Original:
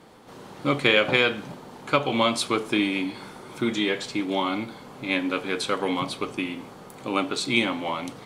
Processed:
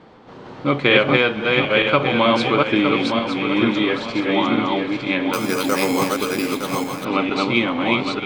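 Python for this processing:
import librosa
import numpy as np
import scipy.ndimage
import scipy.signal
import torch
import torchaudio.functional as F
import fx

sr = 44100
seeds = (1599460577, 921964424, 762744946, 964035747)

y = fx.reverse_delay_fb(x, sr, ms=456, feedback_pct=54, wet_db=-1.5)
y = fx.air_absorb(y, sr, metres=180.0)
y = fx.resample_bad(y, sr, factor=6, down='none', up='hold', at=(5.33, 7.05))
y = fx.echo_stepped(y, sr, ms=680, hz=2800.0, octaves=-1.4, feedback_pct=70, wet_db=-9.5)
y = y * 10.0 ** (5.0 / 20.0)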